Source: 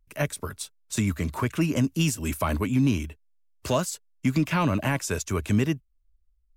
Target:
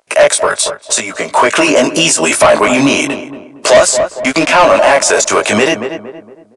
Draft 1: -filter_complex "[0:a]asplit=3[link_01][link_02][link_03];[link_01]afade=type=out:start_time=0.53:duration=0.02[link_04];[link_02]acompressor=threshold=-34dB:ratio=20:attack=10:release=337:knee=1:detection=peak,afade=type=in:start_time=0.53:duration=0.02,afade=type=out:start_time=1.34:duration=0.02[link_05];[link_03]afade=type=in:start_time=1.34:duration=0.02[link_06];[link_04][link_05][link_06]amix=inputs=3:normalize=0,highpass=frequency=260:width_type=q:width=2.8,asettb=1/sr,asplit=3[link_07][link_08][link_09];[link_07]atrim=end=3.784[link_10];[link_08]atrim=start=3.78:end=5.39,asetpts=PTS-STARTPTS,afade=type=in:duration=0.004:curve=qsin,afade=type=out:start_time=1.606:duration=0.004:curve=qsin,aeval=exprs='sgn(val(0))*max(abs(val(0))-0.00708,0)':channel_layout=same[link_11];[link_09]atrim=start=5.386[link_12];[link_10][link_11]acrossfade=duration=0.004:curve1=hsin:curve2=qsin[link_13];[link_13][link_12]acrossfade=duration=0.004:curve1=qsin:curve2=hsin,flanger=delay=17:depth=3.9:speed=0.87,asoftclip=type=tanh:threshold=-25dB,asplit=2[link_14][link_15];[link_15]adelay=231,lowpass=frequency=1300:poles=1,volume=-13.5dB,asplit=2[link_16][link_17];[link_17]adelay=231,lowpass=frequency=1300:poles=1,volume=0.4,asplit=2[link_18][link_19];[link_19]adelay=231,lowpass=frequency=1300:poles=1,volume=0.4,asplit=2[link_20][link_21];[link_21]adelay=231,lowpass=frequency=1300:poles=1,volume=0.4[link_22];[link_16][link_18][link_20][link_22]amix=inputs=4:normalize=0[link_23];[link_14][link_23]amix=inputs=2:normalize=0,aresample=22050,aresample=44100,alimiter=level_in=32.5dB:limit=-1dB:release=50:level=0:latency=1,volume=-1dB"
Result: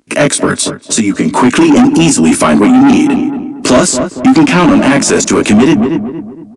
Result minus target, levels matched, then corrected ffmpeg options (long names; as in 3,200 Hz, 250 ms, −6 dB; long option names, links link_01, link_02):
250 Hz band +9.0 dB
-filter_complex "[0:a]asplit=3[link_01][link_02][link_03];[link_01]afade=type=out:start_time=0.53:duration=0.02[link_04];[link_02]acompressor=threshold=-34dB:ratio=20:attack=10:release=337:knee=1:detection=peak,afade=type=in:start_time=0.53:duration=0.02,afade=type=out:start_time=1.34:duration=0.02[link_05];[link_03]afade=type=in:start_time=1.34:duration=0.02[link_06];[link_04][link_05][link_06]amix=inputs=3:normalize=0,highpass=frequency=620:width_type=q:width=2.8,asettb=1/sr,asplit=3[link_07][link_08][link_09];[link_07]atrim=end=3.784[link_10];[link_08]atrim=start=3.78:end=5.39,asetpts=PTS-STARTPTS,afade=type=in:duration=0.004:curve=qsin,afade=type=out:start_time=1.606:duration=0.004:curve=qsin,aeval=exprs='sgn(val(0))*max(abs(val(0))-0.00708,0)':channel_layout=same[link_11];[link_09]atrim=start=5.386[link_12];[link_10][link_11]acrossfade=duration=0.004:curve1=hsin:curve2=qsin[link_13];[link_13][link_12]acrossfade=duration=0.004:curve1=qsin:curve2=hsin,flanger=delay=17:depth=3.9:speed=0.87,asoftclip=type=tanh:threshold=-25dB,asplit=2[link_14][link_15];[link_15]adelay=231,lowpass=frequency=1300:poles=1,volume=-13.5dB,asplit=2[link_16][link_17];[link_17]adelay=231,lowpass=frequency=1300:poles=1,volume=0.4,asplit=2[link_18][link_19];[link_19]adelay=231,lowpass=frequency=1300:poles=1,volume=0.4,asplit=2[link_20][link_21];[link_21]adelay=231,lowpass=frequency=1300:poles=1,volume=0.4[link_22];[link_16][link_18][link_20][link_22]amix=inputs=4:normalize=0[link_23];[link_14][link_23]amix=inputs=2:normalize=0,aresample=22050,aresample=44100,alimiter=level_in=32.5dB:limit=-1dB:release=50:level=0:latency=1,volume=-1dB"